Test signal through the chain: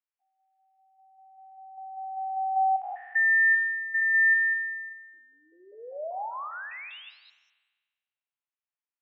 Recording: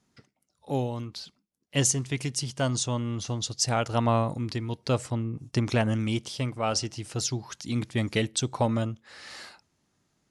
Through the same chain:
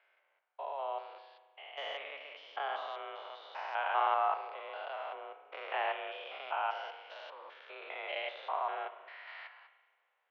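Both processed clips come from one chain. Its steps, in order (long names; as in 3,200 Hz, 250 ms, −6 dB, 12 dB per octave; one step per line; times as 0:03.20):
spectrum averaged block by block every 200 ms
single-sideband voice off tune +150 Hz 480–2,900 Hz
spring reverb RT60 1.4 s, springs 36 ms, chirp 45 ms, DRR 9.5 dB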